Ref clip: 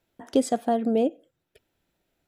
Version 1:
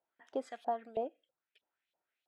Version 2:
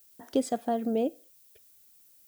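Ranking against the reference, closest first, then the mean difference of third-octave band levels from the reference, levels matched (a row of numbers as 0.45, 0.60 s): 2, 1; 2.0, 5.5 dB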